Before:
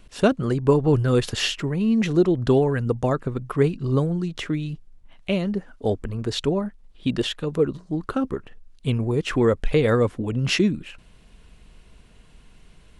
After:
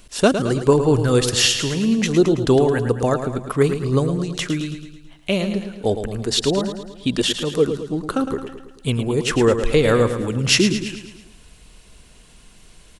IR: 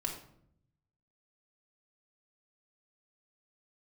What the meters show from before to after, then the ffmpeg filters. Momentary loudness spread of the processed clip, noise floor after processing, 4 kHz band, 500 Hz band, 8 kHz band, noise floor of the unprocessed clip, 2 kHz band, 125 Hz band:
10 LU, -48 dBFS, +8.0 dB, +4.0 dB, +13.0 dB, -52 dBFS, +5.0 dB, +1.5 dB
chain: -af "bass=f=250:g=-3,treble=f=4000:g=10,aecho=1:1:109|218|327|436|545|654:0.355|0.185|0.0959|0.0499|0.0259|0.0135,volume=1.5"

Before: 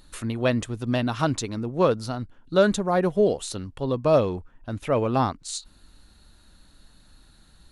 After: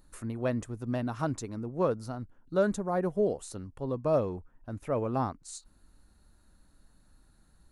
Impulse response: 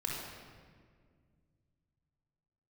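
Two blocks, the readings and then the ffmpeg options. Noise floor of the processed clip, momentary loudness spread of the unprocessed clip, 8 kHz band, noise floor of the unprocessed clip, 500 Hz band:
-64 dBFS, 13 LU, -9.5 dB, -56 dBFS, -7.5 dB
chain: -af "equalizer=f=3400:w=1.1:g=-12,volume=0.447"

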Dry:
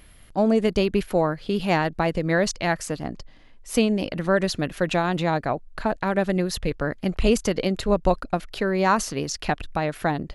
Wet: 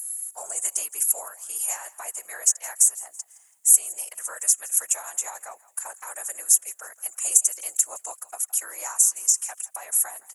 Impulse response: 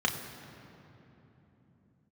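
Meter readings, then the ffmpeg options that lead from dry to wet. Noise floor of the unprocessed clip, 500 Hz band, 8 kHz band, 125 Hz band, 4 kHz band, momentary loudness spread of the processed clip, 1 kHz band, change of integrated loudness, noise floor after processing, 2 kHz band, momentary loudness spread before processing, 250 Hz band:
-49 dBFS, -23.5 dB, +18.0 dB, under -40 dB, -10.0 dB, 16 LU, -15.0 dB, +2.0 dB, -58 dBFS, -13.0 dB, 7 LU, under -40 dB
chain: -filter_complex "[0:a]highpass=f=790:w=0.5412,highpass=f=790:w=1.3066,highshelf=f=5600:t=q:w=3:g=10,acompressor=threshold=0.0501:ratio=4,afftfilt=real='hypot(re,im)*cos(2*PI*random(0))':imag='hypot(re,im)*sin(2*PI*random(1))':win_size=512:overlap=0.75,aexciter=amount=8.9:drive=8:freq=6100,acrusher=bits=11:mix=0:aa=0.000001,asplit=2[s0][s1];[s1]asplit=3[s2][s3][s4];[s2]adelay=165,afreqshift=38,volume=0.0944[s5];[s3]adelay=330,afreqshift=76,volume=0.0367[s6];[s4]adelay=495,afreqshift=114,volume=0.0143[s7];[s5][s6][s7]amix=inputs=3:normalize=0[s8];[s0][s8]amix=inputs=2:normalize=0,volume=0.708"

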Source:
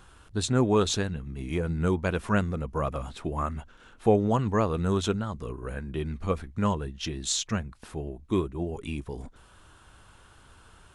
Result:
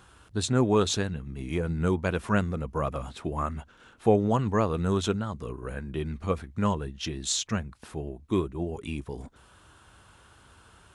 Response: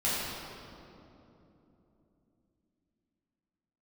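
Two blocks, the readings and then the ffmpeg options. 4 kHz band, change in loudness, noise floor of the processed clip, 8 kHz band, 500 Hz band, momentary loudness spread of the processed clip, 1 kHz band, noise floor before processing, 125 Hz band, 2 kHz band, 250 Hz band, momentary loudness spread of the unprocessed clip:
0.0 dB, 0.0 dB, -57 dBFS, 0.0 dB, 0.0 dB, 13 LU, 0.0 dB, -56 dBFS, -0.5 dB, 0.0 dB, 0.0 dB, 13 LU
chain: -af "highpass=54"

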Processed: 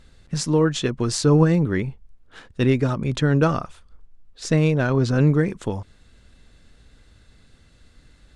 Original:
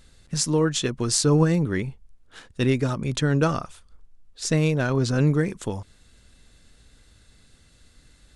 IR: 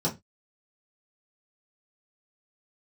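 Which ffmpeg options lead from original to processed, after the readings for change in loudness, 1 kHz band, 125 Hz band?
+2.5 dB, +2.5 dB, +3.0 dB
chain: -af "lowpass=f=3000:p=1,volume=1.41"

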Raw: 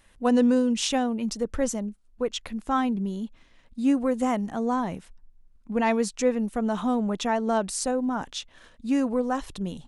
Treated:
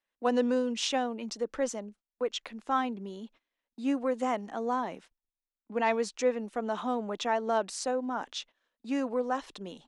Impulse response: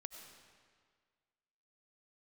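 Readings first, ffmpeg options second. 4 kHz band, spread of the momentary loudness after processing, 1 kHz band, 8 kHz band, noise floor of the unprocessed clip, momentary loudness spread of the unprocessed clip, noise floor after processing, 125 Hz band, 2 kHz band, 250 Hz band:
-3.0 dB, 12 LU, -2.5 dB, -7.0 dB, -58 dBFS, 11 LU, under -85 dBFS, under -10 dB, -2.5 dB, -9.0 dB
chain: -filter_complex "[0:a]agate=range=0.0794:threshold=0.00708:ratio=16:detection=peak,acrossover=split=270 7000:gain=0.0891 1 0.178[s0][s1][s2];[s0][s1][s2]amix=inputs=3:normalize=0,volume=0.75"

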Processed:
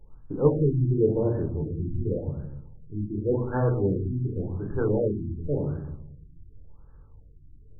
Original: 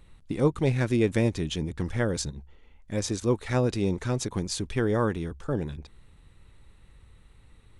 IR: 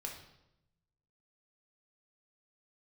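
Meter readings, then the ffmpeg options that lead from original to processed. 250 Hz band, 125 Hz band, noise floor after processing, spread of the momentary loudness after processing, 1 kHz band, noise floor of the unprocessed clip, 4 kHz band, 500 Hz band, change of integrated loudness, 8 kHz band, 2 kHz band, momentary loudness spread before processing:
-0.5 dB, +2.5 dB, -51 dBFS, 14 LU, -3.0 dB, -57 dBFS, under -40 dB, +2.0 dB, +1.0 dB, under -40 dB, -10.5 dB, 10 LU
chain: -filter_complex "[0:a]bandreject=f=60:t=h:w=6,bandreject=f=120:t=h:w=6,bandreject=f=180:t=h:w=6,bandreject=f=240:t=h:w=6,bandreject=f=300:t=h:w=6,bandreject=f=360:t=h:w=6[s0];[1:a]atrim=start_sample=2205[s1];[s0][s1]afir=irnorm=-1:irlink=0,afftfilt=real='re*lt(b*sr/1024,360*pow(1800/360,0.5+0.5*sin(2*PI*0.9*pts/sr)))':imag='im*lt(b*sr/1024,360*pow(1800/360,0.5+0.5*sin(2*PI*0.9*pts/sr)))':win_size=1024:overlap=0.75,volume=1.33"

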